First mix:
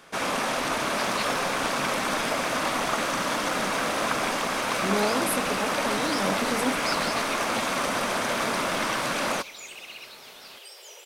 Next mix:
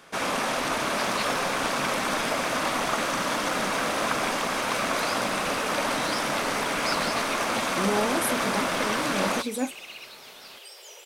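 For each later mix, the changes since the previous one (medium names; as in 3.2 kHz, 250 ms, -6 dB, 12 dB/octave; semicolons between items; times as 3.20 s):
speech: entry +2.95 s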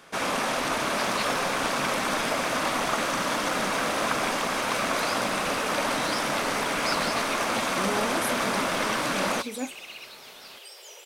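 speech -4.5 dB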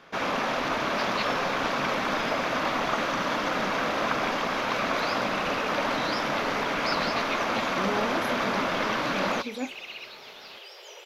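second sound +3.5 dB; master: add boxcar filter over 5 samples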